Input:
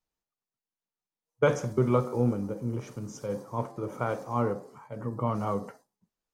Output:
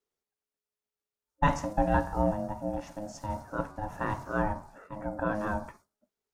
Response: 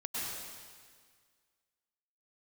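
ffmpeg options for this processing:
-af "aeval=exprs='val(0)*sin(2*PI*420*n/s)':c=same,volume=1.19"

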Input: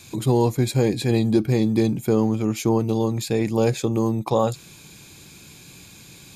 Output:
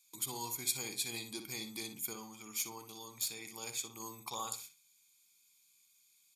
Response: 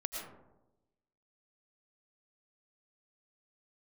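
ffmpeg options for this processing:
-filter_complex "[0:a]agate=range=0.1:threshold=0.0112:ratio=16:detection=peak,aderivative,aecho=1:1:0.9:0.56,asettb=1/sr,asplit=3[s0][s1][s2];[s0]atrim=end=2.134[s3];[s1]atrim=start=2.13:end=4,asetpts=PTS-STARTPTS,afade=t=in:d=0.004:c=qsin,afade=t=out:st=1.866:d=0.004:c=qsin,aeval=exprs='0.119*(cos(1*acos(clip(val(0)/0.119,-1,1)))-cos(1*PI/2))+0.0133*(cos(3*acos(clip(val(0)/0.119,-1,1)))-cos(3*PI/2))':c=same[s4];[s2]atrim=start=3.996[s5];[s3][s4]acrossfade=d=0.004:c1=hsin:c2=qsin[s6];[s6][s5]acrossfade=d=0.004:c1=qsin:c2=hsin,asplit=2[s7][s8];[s8]adelay=60,lowpass=f=3300:p=1,volume=0.447,asplit=2[s9][s10];[s10]adelay=60,lowpass=f=3300:p=1,volume=0.27,asplit=2[s11][s12];[s12]adelay=60,lowpass=f=3300:p=1,volume=0.27[s13];[s7][s9][s11][s13]amix=inputs=4:normalize=0,volume=0.841"

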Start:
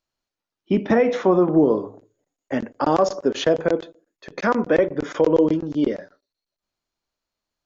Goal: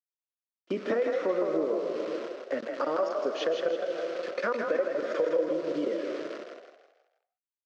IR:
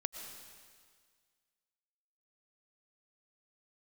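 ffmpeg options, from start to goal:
-filter_complex "[0:a]asplit=2[s0][s1];[1:a]atrim=start_sample=2205,afade=t=out:st=0.38:d=0.01,atrim=end_sample=17199,asetrate=25137,aresample=44100[s2];[s1][s2]afir=irnorm=-1:irlink=0,volume=0.596[s3];[s0][s3]amix=inputs=2:normalize=0,acrusher=bits=6:dc=4:mix=0:aa=0.000001,highpass=330,equalizer=f=530:t=q:w=4:g=10,equalizer=f=820:t=q:w=4:g=-9,equalizer=f=1300:t=q:w=4:g=6,equalizer=f=3600:t=q:w=4:g=-3,lowpass=f=5300:w=0.5412,lowpass=f=5300:w=1.3066,acompressor=threshold=0.0794:ratio=3,asplit=6[s4][s5][s6][s7][s8][s9];[s5]adelay=161,afreqshift=38,volume=0.562[s10];[s6]adelay=322,afreqshift=76,volume=0.237[s11];[s7]adelay=483,afreqshift=114,volume=0.0989[s12];[s8]adelay=644,afreqshift=152,volume=0.0417[s13];[s9]adelay=805,afreqshift=190,volume=0.0176[s14];[s4][s10][s11][s12][s13][s14]amix=inputs=6:normalize=0,volume=0.422"

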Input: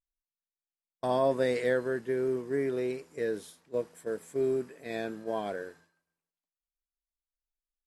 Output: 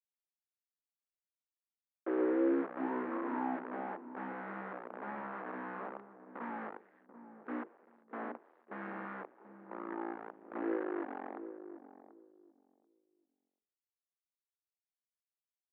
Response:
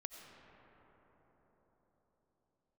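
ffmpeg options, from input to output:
-filter_complex "[0:a]agate=range=0.0224:threshold=0.00447:ratio=3:detection=peak,lowpass=f=1100:p=1,acrusher=bits=7:dc=4:mix=0:aa=0.000001,asplit=2[s0][s1];[s1]adelay=368,lowpass=f=850:p=1,volume=0.376,asplit=2[s2][s3];[s3]adelay=368,lowpass=f=850:p=1,volume=0.24,asplit=2[s4][s5];[s5]adelay=368,lowpass=f=850:p=1,volume=0.24[s6];[s0][s2][s4][s6]amix=inputs=4:normalize=0,asetrate=22050,aresample=44100,asuperpass=centerf=780:order=8:qfactor=0.54,volume=1.26"

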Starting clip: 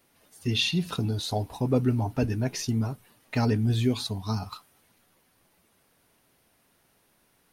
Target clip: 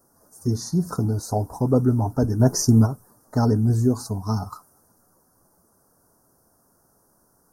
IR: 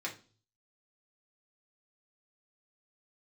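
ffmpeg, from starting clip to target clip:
-filter_complex "[0:a]asuperstop=centerf=2800:order=8:qfactor=0.71,asplit=3[s0][s1][s2];[s0]afade=t=out:st=2.39:d=0.02[s3];[s1]acontrast=72,afade=t=in:st=2.39:d=0.02,afade=t=out:st=2.85:d=0.02[s4];[s2]afade=t=in:st=2.85:d=0.02[s5];[s3][s4][s5]amix=inputs=3:normalize=0,volume=1.78"

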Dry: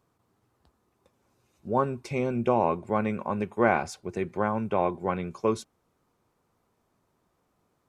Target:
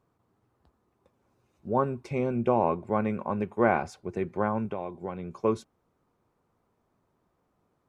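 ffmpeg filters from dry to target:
-filter_complex "[0:a]highshelf=f=2700:g=-9.5,asettb=1/sr,asplit=3[s0][s1][s2];[s0]atrim=end=4.654[s3];[s1]atrim=start=4.65:end=5.34,asetpts=PTS-STARTPTS,afade=t=in:d=0.004:c=qsin,afade=t=out:st=0.686:d=0.004:c=qsin,acrossover=split=1100|2700[s4][s5][s6];[s4]acompressor=threshold=0.0251:ratio=4[s7];[s5]acompressor=threshold=0.00224:ratio=4[s8];[s6]acompressor=threshold=0.00141:ratio=4[s9];[s7][s8][s9]amix=inputs=3:normalize=0[s10];[s2]atrim=start=5.336[s11];[s3][s10]acrossfade=d=0.004:c1=hsin:c2=qsin[s12];[s12][s11]acrossfade=d=0.004:c1=qsin:c2=hsin"

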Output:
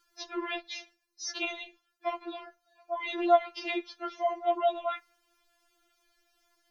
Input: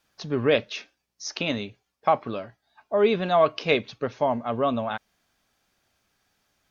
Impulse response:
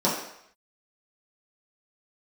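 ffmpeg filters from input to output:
-filter_complex "[0:a]afreqshift=-13,acrossover=split=110|450|1800|6200[s0][s1][s2][s3][s4];[s0]acompressor=threshold=0.00126:ratio=4[s5];[s1]acompressor=threshold=0.0178:ratio=4[s6];[s2]acompressor=threshold=0.0355:ratio=4[s7];[s3]acompressor=threshold=0.0141:ratio=4[s8];[s5][s6][s7][s8][s4]amix=inputs=5:normalize=0,asplit=2[s9][s10];[1:a]atrim=start_sample=2205,asetrate=79380,aresample=44100[s11];[s10][s11]afir=irnorm=-1:irlink=0,volume=0.0211[s12];[s9][s12]amix=inputs=2:normalize=0,afftfilt=real='re*4*eq(mod(b,16),0)':imag='im*4*eq(mod(b,16),0)':win_size=2048:overlap=0.75,volume=1.26"

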